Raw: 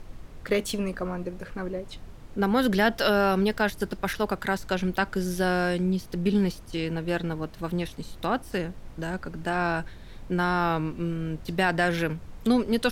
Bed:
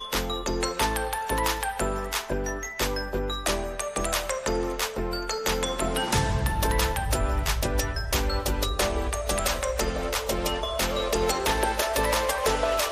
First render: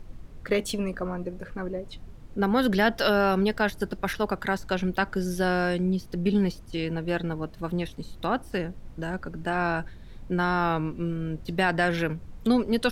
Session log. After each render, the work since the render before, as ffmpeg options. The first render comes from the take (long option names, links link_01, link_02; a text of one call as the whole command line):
ffmpeg -i in.wav -af "afftdn=noise_reduction=6:noise_floor=-45" out.wav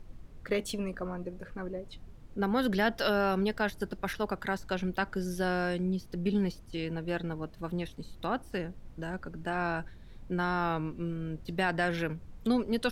ffmpeg -i in.wav -af "volume=-5.5dB" out.wav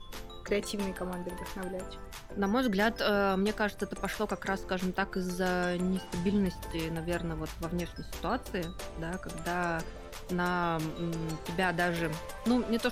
ffmpeg -i in.wav -i bed.wav -filter_complex "[1:a]volume=-17.5dB[link_01];[0:a][link_01]amix=inputs=2:normalize=0" out.wav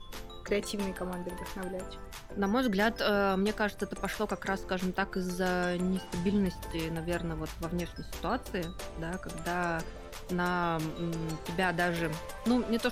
ffmpeg -i in.wav -af anull out.wav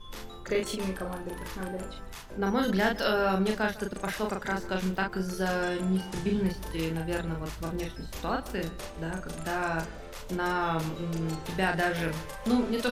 ffmpeg -i in.wav -filter_complex "[0:a]asplit=2[link_01][link_02];[link_02]adelay=37,volume=-3dB[link_03];[link_01][link_03]amix=inputs=2:normalize=0,asplit=2[link_04][link_05];[link_05]adelay=151.6,volume=-18dB,highshelf=frequency=4000:gain=-3.41[link_06];[link_04][link_06]amix=inputs=2:normalize=0" out.wav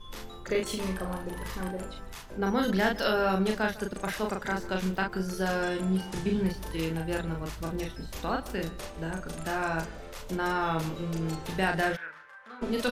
ffmpeg -i in.wav -filter_complex "[0:a]asettb=1/sr,asplit=3[link_01][link_02][link_03];[link_01]atrim=end=0.674[link_04];[link_02]atrim=start=0.67:end=1.71,asetpts=PTS-STARTPTS,afade=type=in:duration=0.004:curve=qsin,afade=type=out:start_time=1.036:duration=0.004:curve=qsin,asplit=2[link_05][link_06];[link_06]adelay=38,volume=-5dB[link_07];[link_05][link_07]amix=inputs=2:normalize=0,atrim=end_sample=45864[link_08];[link_03]atrim=start=1.706[link_09];[link_04][link_08]acrossfade=duration=0.004:curve1=hsin:curve2=qsin[link_10];[link_10][link_09]acrossfade=duration=0.004:curve1=qsin:curve2=hsin,asplit=3[link_11][link_12][link_13];[link_11]afade=type=out:start_time=11.95:duration=0.02[link_14];[link_12]bandpass=frequency=1500:width_type=q:width=4.1,afade=type=in:start_time=11.95:duration=0.02,afade=type=out:start_time=12.61:duration=0.02[link_15];[link_13]afade=type=in:start_time=12.61:duration=0.02[link_16];[link_14][link_15][link_16]amix=inputs=3:normalize=0" out.wav